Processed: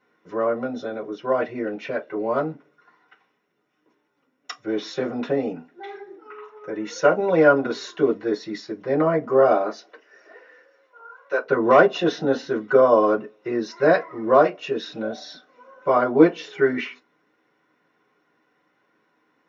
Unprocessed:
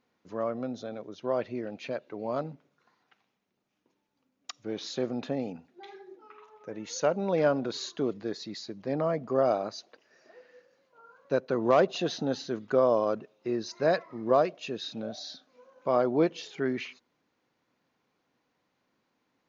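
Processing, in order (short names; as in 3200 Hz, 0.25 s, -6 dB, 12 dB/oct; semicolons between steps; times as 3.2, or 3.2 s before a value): 9.53–11.44 HPF 170 Hz -> 700 Hz 12 dB/oct; reverb RT60 0.15 s, pre-delay 3 ms, DRR -2.5 dB; gain -3 dB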